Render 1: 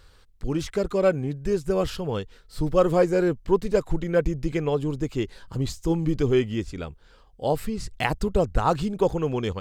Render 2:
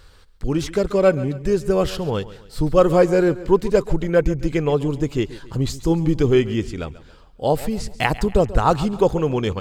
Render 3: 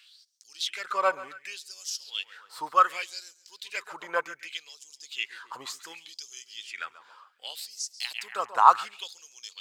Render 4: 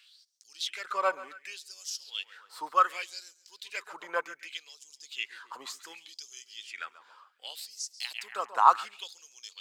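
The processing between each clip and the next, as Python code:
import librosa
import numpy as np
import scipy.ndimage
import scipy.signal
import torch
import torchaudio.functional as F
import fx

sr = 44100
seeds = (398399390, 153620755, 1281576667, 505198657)

y1 = fx.echo_feedback(x, sr, ms=137, feedback_pct=42, wet_db=-17.0)
y1 = y1 * 10.0 ** (5.0 / 20.0)
y2 = fx.filter_lfo_highpass(y1, sr, shape='sine', hz=0.67, low_hz=980.0, high_hz=6000.0, q=5.4)
y2 = y2 * 10.0 ** (-6.0 / 20.0)
y3 = scipy.signal.sosfilt(scipy.signal.butter(4, 190.0, 'highpass', fs=sr, output='sos'), y2)
y3 = y3 * 10.0 ** (-3.0 / 20.0)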